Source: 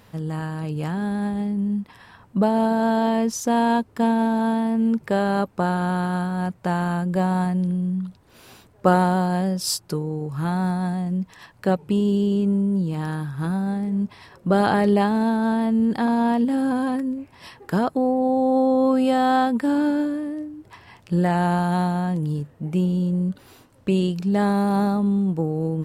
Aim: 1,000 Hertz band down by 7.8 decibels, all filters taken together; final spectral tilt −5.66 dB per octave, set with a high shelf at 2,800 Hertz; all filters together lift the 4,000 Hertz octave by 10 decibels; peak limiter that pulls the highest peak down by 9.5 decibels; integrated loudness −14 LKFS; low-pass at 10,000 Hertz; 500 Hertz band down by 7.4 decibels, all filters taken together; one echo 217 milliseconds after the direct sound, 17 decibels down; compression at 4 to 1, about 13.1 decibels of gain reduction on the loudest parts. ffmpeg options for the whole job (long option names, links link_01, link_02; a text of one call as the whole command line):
ffmpeg -i in.wav -af "lowpass=10000,equalizer=frequency=500:width_type=o:gain=-7.5,equalizer=frequency=1000:width_type=o:gain=-8.5,highshelf=frequency=2800:gain=7.5,equalizer=frequency=4000:width_type=o:gain=7,acompressor=threshold=-28dB:ratio=4,alimiter=level_in=0.5dB:limit=-24dB:level=0:latency=1,volume=-0.5dB,aecho=1:1:217:0.141,volume=18dB" out.wav